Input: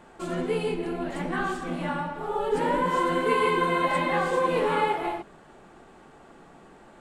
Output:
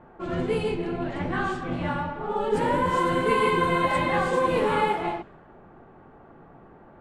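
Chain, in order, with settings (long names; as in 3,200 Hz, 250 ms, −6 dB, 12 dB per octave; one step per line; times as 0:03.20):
sub-octave generator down 1 octave, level −4 dB
low-pass that shuts in the quiet parts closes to 1,300 Hz, open at −20.5 dBFS
level +1 dB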